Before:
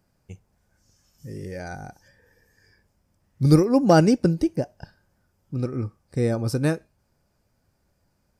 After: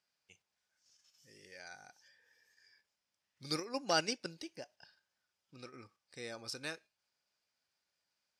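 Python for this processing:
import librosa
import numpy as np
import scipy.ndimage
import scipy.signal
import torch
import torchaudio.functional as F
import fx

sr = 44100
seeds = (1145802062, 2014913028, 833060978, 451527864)

p1 = fx.level_steps(x, sr, step_db=16)
p2 = x + (p1 * librosa.db_to_amplitude(1.0))
p3 = fx.bandpass_q(p2, sr, hz=3600.0, q=1.3)
y = p3 * librosa.db_to_amplitude(-4.5)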